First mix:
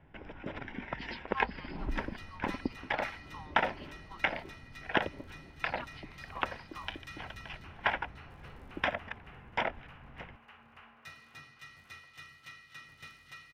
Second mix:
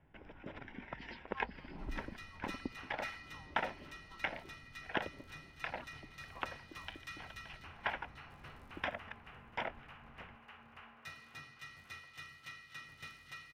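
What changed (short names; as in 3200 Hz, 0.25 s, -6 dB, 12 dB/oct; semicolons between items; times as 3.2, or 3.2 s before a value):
speech -11.0 dB; first sound -7.5 dB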